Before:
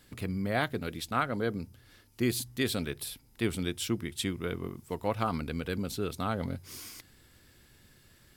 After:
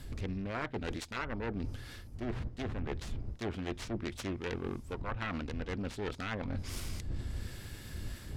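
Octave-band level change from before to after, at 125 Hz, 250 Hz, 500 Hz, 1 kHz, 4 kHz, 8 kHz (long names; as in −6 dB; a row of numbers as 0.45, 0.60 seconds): −2.5, −5.5, −6.0, −7.0, −8.0, −9.5 decibels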